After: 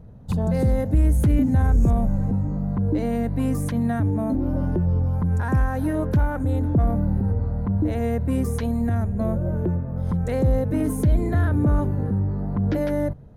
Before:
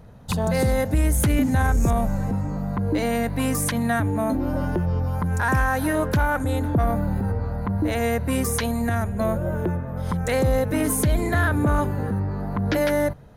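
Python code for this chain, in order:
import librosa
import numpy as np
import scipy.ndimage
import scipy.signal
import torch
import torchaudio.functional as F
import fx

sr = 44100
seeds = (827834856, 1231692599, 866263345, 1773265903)

y = fx.tilt_shelf(x, sr, db=8.0, hz=690.0)
y = y * 10.0 ** (-5.0 / 20.0)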